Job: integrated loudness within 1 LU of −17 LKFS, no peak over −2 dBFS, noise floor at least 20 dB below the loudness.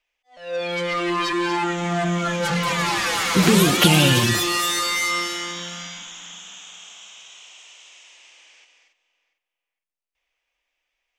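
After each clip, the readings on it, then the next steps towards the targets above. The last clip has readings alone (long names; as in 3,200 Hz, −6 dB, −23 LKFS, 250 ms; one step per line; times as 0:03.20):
integrated loudness −20.0 LKFS; sample peak −2.5 dBFS; target loudness −17.0 LKFS
→ level +3 dB
brickwall limiter −2 dBFS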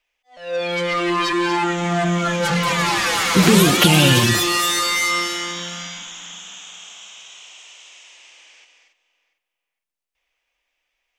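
integrated loudness −17.0 LKFS; sample peak −2.0 dBFS; background noise floor −82 dBFS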